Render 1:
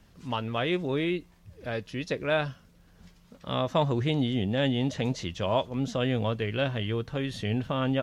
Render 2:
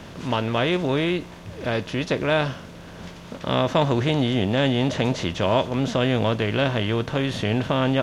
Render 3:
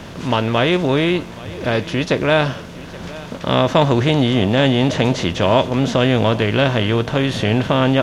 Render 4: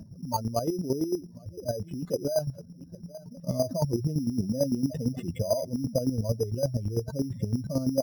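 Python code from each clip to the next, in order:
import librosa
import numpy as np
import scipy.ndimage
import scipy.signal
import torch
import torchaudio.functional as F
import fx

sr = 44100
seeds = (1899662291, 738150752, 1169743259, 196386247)

y1 = fx.bin_compress(x, sr, power=0.6)
y1 = y1 * 10.0 ** (3.0 / 20.0)
y2 = y1 + 10.0 ** (-19.0 / 20.0) * np.pad(y1, (int(825 * sr / 1000.0), 0))[:len(y1)]
y2 = y2 * 10.0 ** (6.0 / 20.0)
y3 = fx.spec_expand(y2, sr, power=3.6)
y3 = np.repeat(y3[::8], 8)[:len(y3)]
y3 = fx.chopper(y3, sr, hz=8.9, depth_pct=65, duty_pct=25)
y3 = y3 * 10.0 ** (-7.0 / 20.0)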